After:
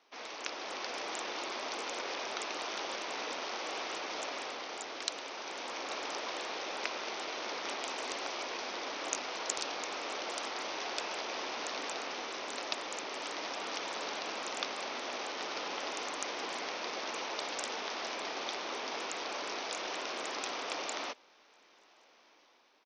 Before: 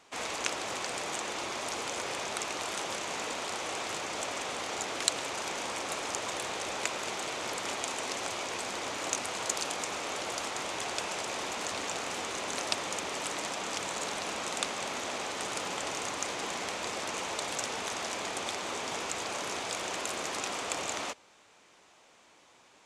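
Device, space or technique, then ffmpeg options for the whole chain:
Bluetooth headset: -af "highpass=frequency=240:width=0.5412,highpass=frequency=240:width=1.3066,dynaudnorm=framelen=170:gausssize=7:maxgain=6dB,aresample=16000,aresample=44100,volume=-8.5dB" -ar 48000 -c:a sbc -b:a 64k

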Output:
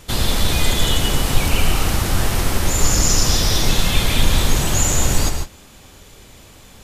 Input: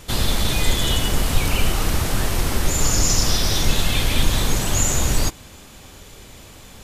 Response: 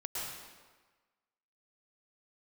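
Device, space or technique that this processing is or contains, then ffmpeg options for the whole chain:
keyed gated reverb: -filter_complex "[0:a]asplit=3[link_01][link_02][link_03];[1:a]atrim=start_sample=2205[link_04];[link_02][link_04]afir=irnorm=-1:irlink=0[link_05];[link_03]apad=whole_len=301352[link_06];[link_05][link_06]sidechaingate=range=-33dB:threshold=-35dB:ratio=16:detection=peak,volume=-4dB[link_07];[link_01][link_07]amix=inputs=2:normalize=0,volume=-1.5dB"

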